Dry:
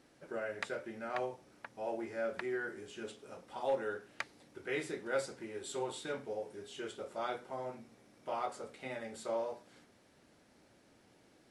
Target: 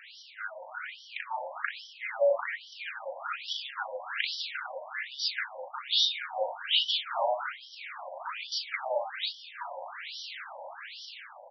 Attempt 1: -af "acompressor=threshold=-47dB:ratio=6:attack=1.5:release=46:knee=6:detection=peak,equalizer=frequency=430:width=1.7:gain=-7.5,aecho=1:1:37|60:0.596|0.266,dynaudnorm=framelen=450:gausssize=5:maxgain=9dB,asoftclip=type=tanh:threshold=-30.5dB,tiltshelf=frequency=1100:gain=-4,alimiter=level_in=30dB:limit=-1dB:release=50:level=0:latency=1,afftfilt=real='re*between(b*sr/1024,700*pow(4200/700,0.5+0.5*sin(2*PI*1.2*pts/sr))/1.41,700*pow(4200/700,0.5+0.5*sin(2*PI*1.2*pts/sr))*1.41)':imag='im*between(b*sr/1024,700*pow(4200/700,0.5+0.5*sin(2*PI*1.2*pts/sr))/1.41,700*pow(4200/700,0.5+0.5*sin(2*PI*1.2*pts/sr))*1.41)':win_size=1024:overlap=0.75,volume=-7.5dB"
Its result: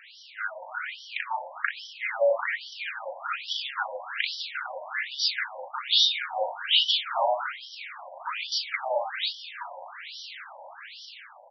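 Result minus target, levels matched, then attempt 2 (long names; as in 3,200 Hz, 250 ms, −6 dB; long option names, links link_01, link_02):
downward compressor: peak gain reduction −6 dB; 500 Hz band −2.5 dB
-af "acompressor=threshold=-54.5dB:ratio=6:attack=1.5:release=46:knee=6:detection=peak,aecho=1:1:37|60:0.596|0.266,dynaudnorm=framelen=450:gausssize=5:maxgain=9dB,asoftclip=type=tanh:threshold=-30.5dB,tiltshelf=frequency=1100:gain=-4,alimiter=level_in=30dB:limit=-1dB:release=50:level=0:latency=1,afftfilt=real='re*between(b*sr/1024,700*pow(4200/700,0.5+0.5*sin(2*PI*1.2*pts/sr))/1.41,700*pow(4200/700,0.5+0.5*sin(2*PI*1.2*pts/sr))*1.41)':imag='im*between(b*sr/1024,700*pow(4200/700,0.5+0.5*sin(2*PI*1.2*pts/sr))/1.41,700*pow(4200/700,0.5+0.5*sin(2*PI*1.2*pts/sr))*1.41)':win_size=1024:overlap=0.75,volume=-7.5dB"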